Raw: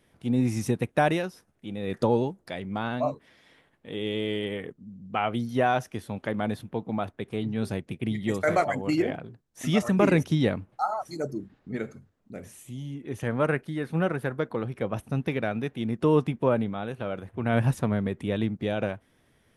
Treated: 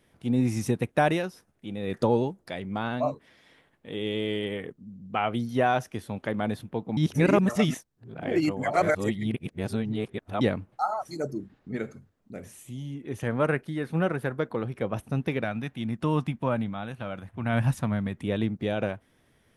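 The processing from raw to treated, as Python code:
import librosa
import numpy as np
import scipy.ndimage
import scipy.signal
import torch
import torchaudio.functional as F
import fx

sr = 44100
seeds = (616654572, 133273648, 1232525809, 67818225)

y = fx.peak_eq(x, sr, hz=420.0, db=-11.0, octaves=0.7, at=(15.44, 18.22))
y = fx.edit(y, sr, fx.reverse_span(start_s=6.97, length_s=3.44), tone=tone)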